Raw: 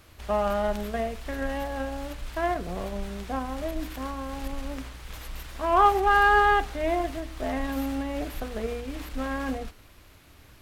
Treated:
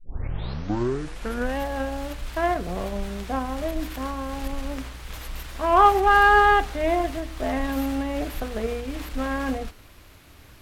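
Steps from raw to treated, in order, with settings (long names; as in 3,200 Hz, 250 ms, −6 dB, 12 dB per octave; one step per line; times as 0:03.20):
turntable start at the beginning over 1.57 s
level +3.5 dB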